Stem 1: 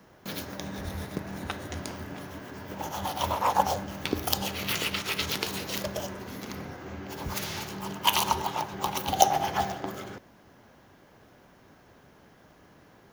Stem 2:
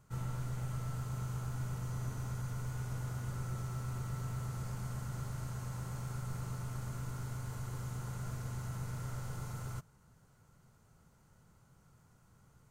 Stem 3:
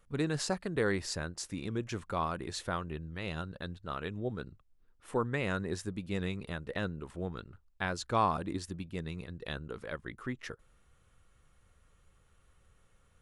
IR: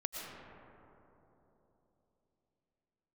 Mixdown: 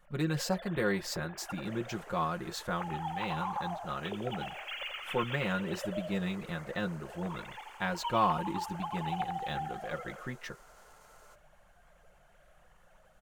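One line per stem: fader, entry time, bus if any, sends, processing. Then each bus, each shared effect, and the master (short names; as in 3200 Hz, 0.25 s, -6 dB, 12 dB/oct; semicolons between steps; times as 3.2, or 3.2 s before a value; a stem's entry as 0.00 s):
-3.0 dB, 0.00 s, no send, echo send -5.5 dB, sine-wave speech; compressor, threshold -32 dBFS, peak gain reduction 19.5 dB
-4.0 dB, 1.55 s, no send, no echo send, HPF 390 Hz 24 dB/oct; limiter -45.5 dBFS, peak gain reduction 6.5 dB
-1.0 dB, 0.00 s, no send, no echo send, comb 5.6 ms, depth 73%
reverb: off
echo: feedback echo 86 ms, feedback 56%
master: notch 370 Hz, Q 12; decimation joined by straight lines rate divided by 2×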